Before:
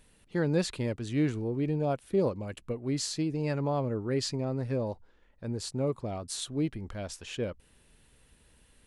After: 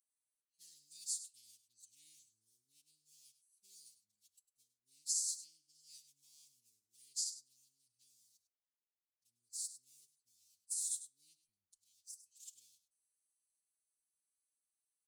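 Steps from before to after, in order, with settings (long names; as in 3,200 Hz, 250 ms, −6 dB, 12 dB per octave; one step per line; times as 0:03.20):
adaptive Wiener filter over 25 samples
inverse Chebyshev high-pass filter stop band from 1,600 Hz, stop band 70 dB
brickwall limiter −35 dBFS, peak gain reduction 10.5 dB
sample-and-hold tremolo
phase-vocoder stretch with locked phases 1.7×
single-tap delay 101 ms −13 dB
on a send at −19 dB: convolution reverb, pre-delay 8 ms
on the sum: level +11.5 dB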